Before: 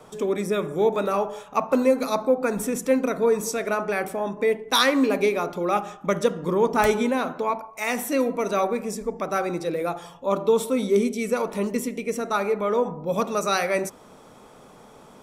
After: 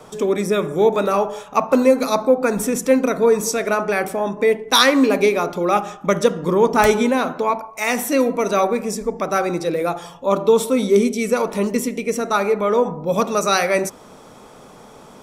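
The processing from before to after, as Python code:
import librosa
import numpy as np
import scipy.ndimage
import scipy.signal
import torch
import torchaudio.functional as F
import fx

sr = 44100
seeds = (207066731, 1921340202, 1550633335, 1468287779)

y = fx.peak_eq(x, sr, hz=5500.0, db=2.5, octaves=0.77)
y = y * 10.0 ** (5.5 / 20.0)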